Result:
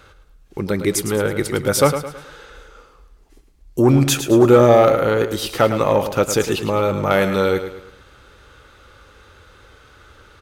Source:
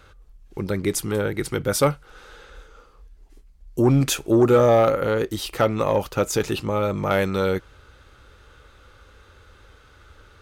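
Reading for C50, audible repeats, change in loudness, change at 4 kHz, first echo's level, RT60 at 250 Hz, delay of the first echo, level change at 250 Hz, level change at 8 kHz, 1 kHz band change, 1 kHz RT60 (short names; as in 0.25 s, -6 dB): none, 4, +4.5 dB, +5.0 dB, -10.0 dB, none, 0.108 s, +4.5 dB, +5.0 dB, +5.0 dB, none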